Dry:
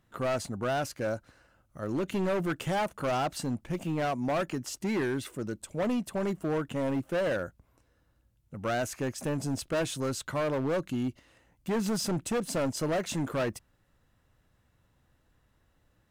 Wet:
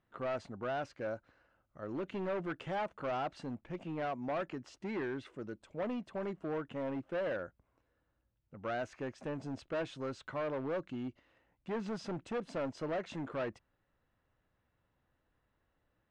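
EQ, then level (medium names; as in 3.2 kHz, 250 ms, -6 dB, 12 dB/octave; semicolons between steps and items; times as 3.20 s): distance through air 100 m; tone controls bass -6 dB, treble -6 dB; treble shelf 10 kHz -10 dB; -6.0 dB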